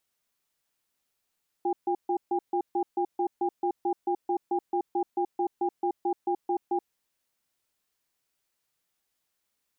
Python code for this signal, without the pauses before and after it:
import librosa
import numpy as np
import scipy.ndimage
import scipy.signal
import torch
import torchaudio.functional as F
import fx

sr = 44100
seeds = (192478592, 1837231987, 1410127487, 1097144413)

y = fx.cadence(sr, length_s=5.18, low_hz=353.0, high_hz=804.0, on_s=0.08, off_s=0.14, level_db=-26.5)